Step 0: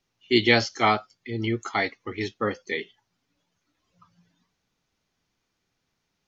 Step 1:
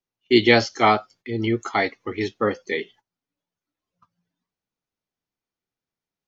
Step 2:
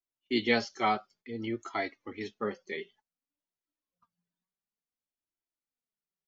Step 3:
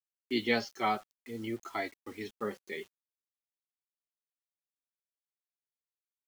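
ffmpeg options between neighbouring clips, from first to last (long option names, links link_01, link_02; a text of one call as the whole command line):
ffmpeg -i in.wav -af "agate=range=-17dB:threshold=-53dB:ratio=16:detection=peak,equalizer=frequency=490:width=0.45:gain=4.5,volume=1dB" out.wav
ffmpeg -i in.wav -af "flanger=delay=3:depth=2.3:regen=28:speed=0.56:shape=sinusoidal,volume=-8dB" out.wav
ffmpeg -i in.wav -af "acrusher=bits=8:mix=0:aa=0.000001,volume=-2.5dB" out.wav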